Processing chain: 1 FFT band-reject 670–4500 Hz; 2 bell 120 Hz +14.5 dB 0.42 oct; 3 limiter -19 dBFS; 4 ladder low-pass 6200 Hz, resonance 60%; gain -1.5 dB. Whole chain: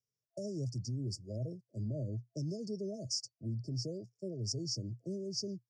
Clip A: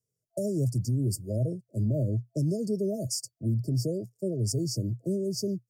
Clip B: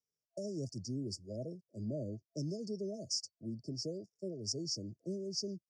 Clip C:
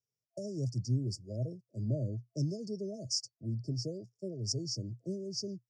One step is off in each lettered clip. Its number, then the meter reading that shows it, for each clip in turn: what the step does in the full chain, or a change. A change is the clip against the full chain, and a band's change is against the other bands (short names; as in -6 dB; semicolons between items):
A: 4, 4 kHz band -9.5 dB; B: 2, 125 Hz band -6.0 dB; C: 3, crest factor change +2.0 dB